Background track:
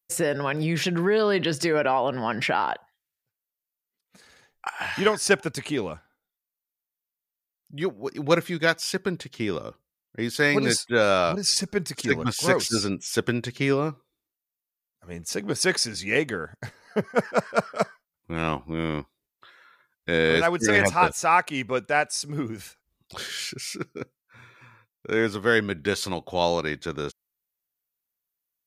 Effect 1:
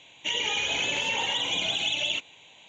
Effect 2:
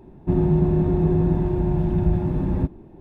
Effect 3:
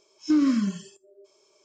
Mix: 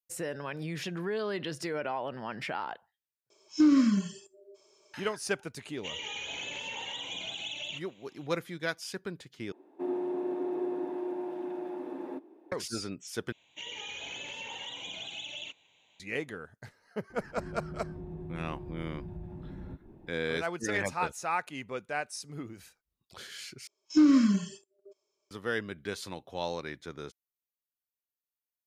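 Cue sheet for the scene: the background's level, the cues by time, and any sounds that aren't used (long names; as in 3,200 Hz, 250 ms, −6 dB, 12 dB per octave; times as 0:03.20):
background track −11.5 dB
0:03.30: overwrite with 3 −1 dB
0:05.59: mix in 1 −11 dB
0:09.52: overwrite with 2 −7.5 dB + elliptic high-pass filter 290 Hz, stop band 60 dB
0:13.32: overwrite with 1 −13.5 dB
0:17.10: mix in 2 −8 dB + downward compressor 2.5 to 1, threshold −38 dBFS
0:23.67: overwrite with 3 + noise gate −53 dBFS, range −18 dB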